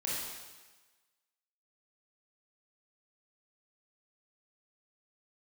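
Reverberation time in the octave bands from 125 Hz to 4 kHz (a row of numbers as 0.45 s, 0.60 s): 1.1 s, 1.2 s, 1.2 s, 1.3 s, 1.3 s, 1.3 s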